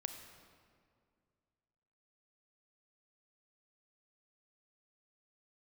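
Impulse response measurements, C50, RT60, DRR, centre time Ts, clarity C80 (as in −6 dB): 7.5 dB, 2.2 s, 6.5 dB, 32 ms, 8.5 dB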